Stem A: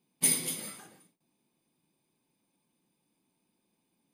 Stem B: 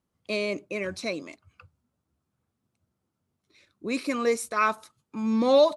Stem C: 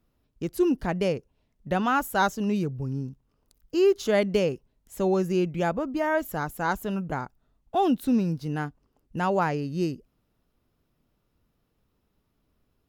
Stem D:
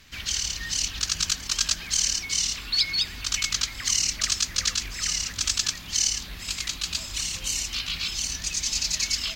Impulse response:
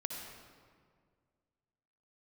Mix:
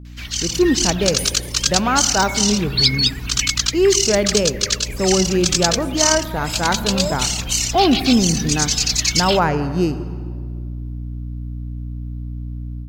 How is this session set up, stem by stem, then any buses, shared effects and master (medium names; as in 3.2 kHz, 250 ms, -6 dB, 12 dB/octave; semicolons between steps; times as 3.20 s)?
-8.5 dB, 0.95 s, no send, none
-14.5 dB, 1.45 s, no send, none
-1.5 dB, 0.00 s, send -7 dB, de-esser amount 80%; hum 60 Hz, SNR 10 dB
+2.0 dB, 0.05 s, no send, reverb removal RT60 0.84 s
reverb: on, RT60 1.9 s, pre-delay 54 ms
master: level rider gain up to 8 dB